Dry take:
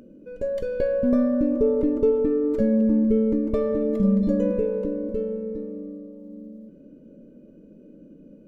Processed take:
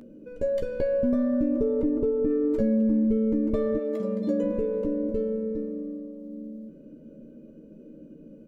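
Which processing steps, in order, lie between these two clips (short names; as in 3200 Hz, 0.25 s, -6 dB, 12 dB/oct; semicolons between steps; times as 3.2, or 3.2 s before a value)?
1.82–2.3 high shelf 2200 Hz -11 dB; 3.77–4.43 HPF 560 Hz -> 190 Hz 12 dB/oct; compressor, threshold -22 dBFS, peak gain reduction 6.5 dB; doubler 13 ms -7 dB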